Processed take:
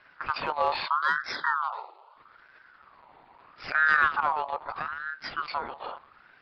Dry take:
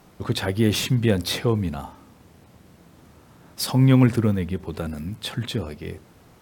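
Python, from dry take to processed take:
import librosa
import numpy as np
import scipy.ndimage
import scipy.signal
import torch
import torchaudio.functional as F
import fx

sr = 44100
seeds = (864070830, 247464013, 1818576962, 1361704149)

p1 = fx.lpc_monotone(x, sr, seeds[0], pitch_hz=150.0, order=10)
p2 = np.clip(10.0 ** (19.0 / 20.0) * p1, -1.0, 1.0) / 10.0 ** (19.0 / 20.0)
p3 = p1 + (p2 * 10.0 ** (-3.0 / 20.0))
p4 = fx.spec_erase(p3, sr, start_s=0.87, length_s=1.3, low_hz=520.0, high_hz=1600.0)
p5 = fx.ring_lfo(p4, sr, carrier_hz=1200.0, swing_pct=30, hz=0.78)
y = p5 * 10.0 ** (-6.5 / 20.0)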